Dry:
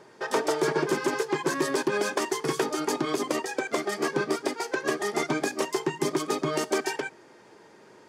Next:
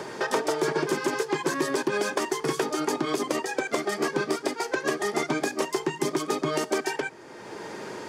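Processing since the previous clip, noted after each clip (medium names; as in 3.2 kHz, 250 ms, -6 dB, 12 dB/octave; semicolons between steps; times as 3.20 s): three bands compressed up and down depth 70%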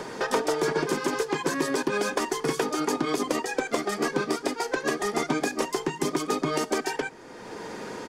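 bass shelf 75 Hz +11.5 dB; comb 4.1 ms, depth 31%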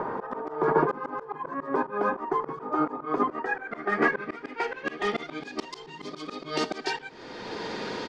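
pre-echo 136 ms -20.5 dB; low-pass sweep 1.1 kHz -> 4.1 kHz, 2.93–5.71 s; slow attack 234 ms; trim +2.5 dB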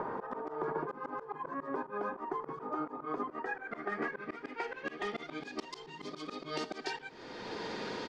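compression 4:1, threshold -29 dBFS, peak gain reduction 10.5 dB; trim -5 dB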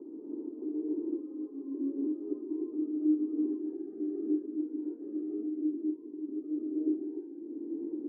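in parallel at -11 dB: sample-and-hold 22×; on the sum: Butterworth band-pass 310 Hz, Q 4.8; gated-style reverb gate 340 ms rising, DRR -6.5 dB; trim +4.5 dB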